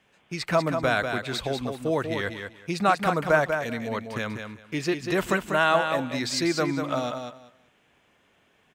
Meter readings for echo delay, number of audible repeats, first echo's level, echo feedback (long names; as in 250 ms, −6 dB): 193 ms, 2, −6.5 dB, 19%